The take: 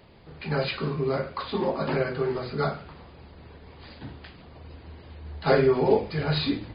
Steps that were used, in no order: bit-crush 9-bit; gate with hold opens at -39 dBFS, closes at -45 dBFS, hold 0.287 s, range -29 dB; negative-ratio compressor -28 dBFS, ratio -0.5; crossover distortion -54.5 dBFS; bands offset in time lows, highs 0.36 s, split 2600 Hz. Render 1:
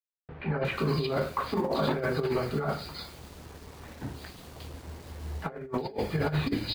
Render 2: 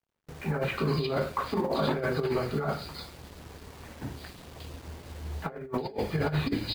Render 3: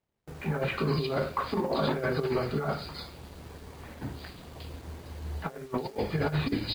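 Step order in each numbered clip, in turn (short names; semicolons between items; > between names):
crossover distortion > gate with hold > bit-crush > bands offset in time > negative-ratio compressor; bands offset in time > crossover distortion > bit-crush > gate with hold > negative-ratio compressor; bands offset in time > negative-ratio compressor > bit-crush > crossover distortion > gate with hold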